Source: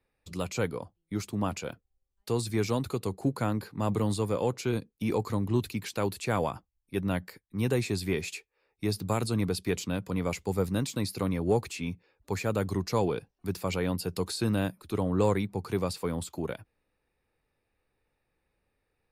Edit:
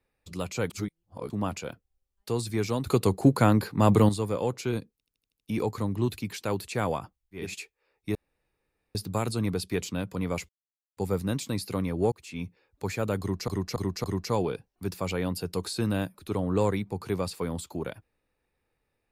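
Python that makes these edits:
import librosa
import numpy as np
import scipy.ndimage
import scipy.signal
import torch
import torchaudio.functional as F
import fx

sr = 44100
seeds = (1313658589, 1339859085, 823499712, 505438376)

y = fx.edit(x, sr, fx.reverse_span(start_s=0.7, length_s=0.6),
    fx.clip_gain(start_s=2.87, length_s=1.22, db=8.5),
    fx.stutter(start_s=4.92, slice_s=0.08, count=7),
    fx.cut(start_s=6.95, length_s=1.23, crossfade_s=0.24),
    fx.insert_room_tone(at_s=8.9, length_s=0.8),
    fx.insert_silence(at_s=10.44, length_s=0.48),
    fx.fade_in_span(start_s=11.59, length_s=0.32),
    fx.repeat(start_s=12.67, length_s=0.28, count=4), tone=tone)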